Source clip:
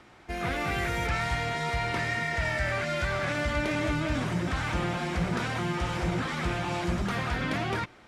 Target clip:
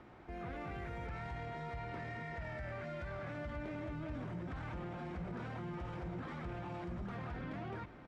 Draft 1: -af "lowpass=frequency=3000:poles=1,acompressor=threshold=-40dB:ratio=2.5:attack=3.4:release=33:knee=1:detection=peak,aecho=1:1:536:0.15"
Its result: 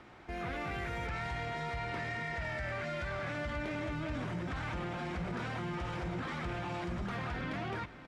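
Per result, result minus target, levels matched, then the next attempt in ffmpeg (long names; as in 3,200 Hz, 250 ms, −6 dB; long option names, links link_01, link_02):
4,000 Hz band +6.0 dB; downward compressor: peak gain reduction −4.5 dB
-af "lowpass=frequency=870:poles=1,acompressor=threshold=-40dB:ratio=2.5:attack=3.4:release=33:knee=1:detection=peak,aecho=1:1:536:0.15"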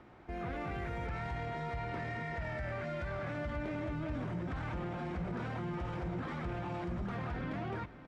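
downward compressor: peak gain reduction −5 dB
-af "lowpass=frequency=870:poles=1,acompressor=threshold=-48dB:ratio=2.5:attack=3.4:release=33:knee=1:detection=peak,aecho=1:1:536:0.15"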